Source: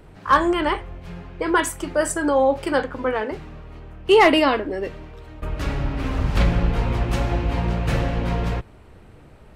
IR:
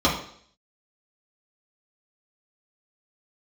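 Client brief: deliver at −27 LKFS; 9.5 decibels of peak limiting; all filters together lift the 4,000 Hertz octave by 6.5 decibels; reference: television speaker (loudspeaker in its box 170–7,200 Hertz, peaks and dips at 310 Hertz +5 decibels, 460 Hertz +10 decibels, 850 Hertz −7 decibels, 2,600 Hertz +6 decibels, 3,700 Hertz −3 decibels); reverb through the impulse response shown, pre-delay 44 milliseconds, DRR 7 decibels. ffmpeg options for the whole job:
-filter_complex "[0:a]equalizer=frequency=4000:width_type=o:gain=7.5,alimiter=limit=-13dB:level=0:latency=1,asplit=2[link_01][link_02];[1:a]atrim=start_sample=2205,adelay=44[link_03];[link_02][link_03]afir=irnorm=-1:irlink=0,volume=-24.5dB[link_04];[link_01][link_04]amix=inputs=2:normalize=0,highpass=frequency=170:width=0.5412,highpass=frequency=170:width=1.3066,equalizer=frequency=310:width_type=q:width=4:gain=5,equalizer=frequency=460:width_type=q:width=4:gain=10,equalizer=frequency=850:width_type=q:width=4:gain=-7,equalizer=frequency=2600:width_type=q:width=4:gain=6,equalizer=frequency=3700:width_type=q:width=4:gain=-3,lowpass=frequency=7200:width=0.5412,lowpass=frequency=7200:width=1.3066,volume=-6.5dB"

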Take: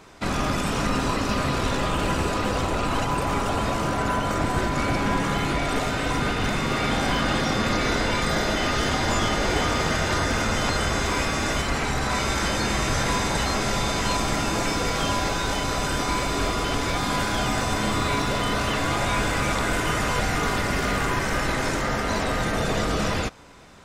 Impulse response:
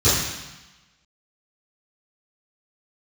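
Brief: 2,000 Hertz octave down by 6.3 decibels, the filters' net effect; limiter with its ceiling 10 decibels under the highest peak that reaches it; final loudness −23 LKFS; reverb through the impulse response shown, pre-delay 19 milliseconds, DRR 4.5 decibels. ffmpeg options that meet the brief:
-filter_complex "[0:a]equalizer=frequency=2000:width_type=o:gain=-8.5,alimiter=limit=-21dB:level=0:latency=1,asplit=2[link_01][link_02];[1:a]atrim=start_sample=2205,adelay=19[link_03];[link_02][link_03]afir=irnorm=-1:irlink=0,volume=-24.5dB[link_04];[link_01][link_04]amix=inputs=2:normalize=0,volume=3.5dB"

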